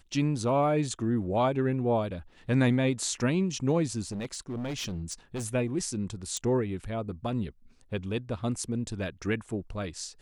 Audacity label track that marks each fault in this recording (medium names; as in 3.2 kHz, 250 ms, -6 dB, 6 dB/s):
4.080000	5.460000	clipped -30.5 dBFS
6.370000	6.370000	pop -20 dBFS